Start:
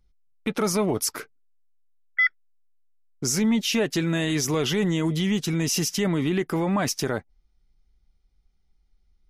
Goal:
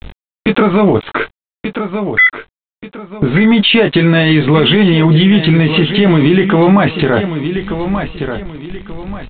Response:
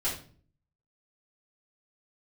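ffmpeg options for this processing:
-filter_complex "[0:a]acompressor=threshold=0.00282:ratio=2,aresample=8000,aeval=exprs='val(0)*gte(abs(val(0)),0.001)':c=same,aresample=44100,asplit=2[s0][s1];[s1]adelay=20,volume=0.473[s2];[s0][s2]amix=inputs=2:normalize=0,aecho=1:1:1183|2366|3549:0.224|0.0716|0.0229,alimiter=level_in=56.2:limit=0.891:release=50:level=0:latency=1,volume=0.891"

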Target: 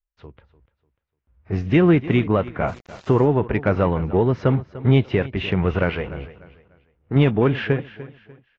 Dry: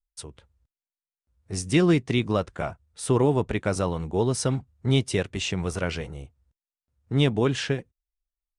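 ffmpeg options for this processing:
-filter_complex "[0:a]lowpass=f=2500:w=0.5412,lowpass=f=2500:w=1.3066,dynaudnorm=f=170:g=7:m=4.47,asplit=2[s0][s1];[s1]asoftclip=type=tanh:threshold=0.188,volume=0.251[s2];[s0][s2]amix=inputs=2:normalize=0,asettb=1/sr,asplit=3[s3][s4][s5];[s3]atrim=end=5.894[s6];[s4]atrim=start=5.89:end=7.16,asetpts=PTS-STARTPTS,afade=t=in:d=0.004:c=qsin,afade=t=out:st=1.266:d=0.004:c=qsin,equalizer=f=110:t=o:w=2:g=-6.5[s7];[s5]atrim=start=7.156[s8];[s6][s7]acrossfade=d=0.004:c1=hsin:c2=qsin[s9];[s9][s8]acrossfade=d=0.004:c1=qsin:c2=hsin,asplit=2[s10][s11];[s11]aecho=0:1:296|592|888:0.133|0.04|0.012[s12];[s10][s12]amix=inputs=2:normalize=0,alimiter=limit=0.596:level=0:latency=1:release=411,asettb=1/sr,asplit=3[s13][s14][s15];[s13]atrim=end=2.684[s16];[s14]atrim=start=2.68:end=3.25,asetpts=PTS-STARTPTS,afade=t=in:d=0.004:c=qsin,afade=t=out:st=0.566:d=0.004:c=qsin,aeval=exprs='val(0)*gte(abs(val(0)),0.0158)':c=same[s17];[s15]atrim=start=3.246[s18];[s16][s17]acrossfade=d=0.004:c1=hsin:c2=qsin[s19];[s19][s18]acrossfade=d=0.004:c1=qsin:c2=hsin,volume=0.75" -ar 16000 -c:a aac -b:a 32k

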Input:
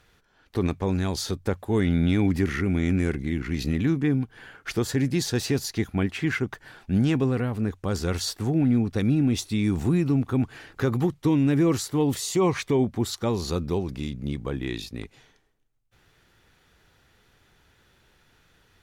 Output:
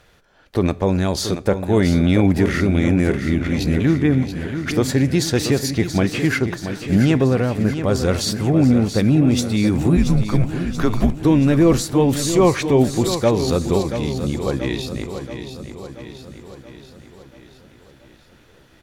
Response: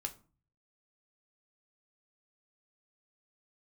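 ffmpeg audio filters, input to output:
-filter_complex "[0:a]equalizer=f=590:w=3.2:g=8,asplit=3[s0][s1][s2];[s0]afade=t=out:st=9.96:d=0.02[s3];[s1]afreqshift=-120,afade=t=in:st=9.96:d=0.02,afade=t=out:st=11.23:d=0.02[s4];[s2]afade=t=in:st=11.23:d=0.02[s5];[s3][s4][s5]amix=inputs=3:normalize=0,aecho=1:1:680|1360|2040|2720|3400|4080|4760:0.335|0.191|0.109|0.062|0.0354|0.0202|0.0115,asplit=2[s6][s7];[1:a]atrim=start_sample=2205,asetrate=22491,aresample=44100[s8];[s7][s8]afir=irnorm=-1:irlink=0,volume=0.178[s9];[s6][s9]amix=inputs=2:normalize=0,volume=1.68"

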